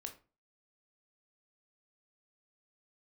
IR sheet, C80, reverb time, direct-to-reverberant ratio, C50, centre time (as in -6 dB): 18.0 dB, 0.35 s, 4.5 dB, 12.0 dB, 11 ms